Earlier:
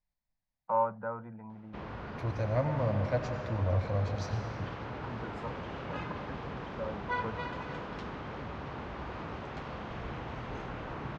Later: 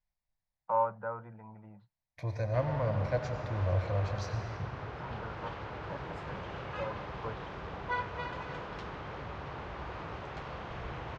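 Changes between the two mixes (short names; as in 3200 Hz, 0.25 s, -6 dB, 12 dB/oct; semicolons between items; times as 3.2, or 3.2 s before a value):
background: entry +0.80 s; master: add bell 240 Hz -8 dB 0.72 oct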